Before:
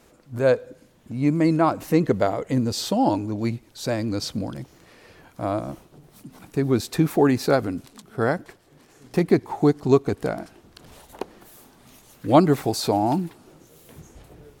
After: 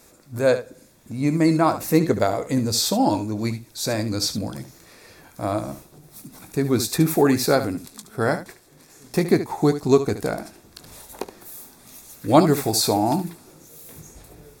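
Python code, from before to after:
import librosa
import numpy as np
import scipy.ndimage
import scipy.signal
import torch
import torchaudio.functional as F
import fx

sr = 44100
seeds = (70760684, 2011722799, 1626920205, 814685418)

p1 = fx.high_shelf(x, sr, hz=4200.0, db=11.5)
p2 = fx.notch(p1, sr, hz=3000.0, q=5.9)
y = p2 + fx.room_early_taps(p2, sr, ms=(19, 72), db=(-12.5, -11.5), dry=0)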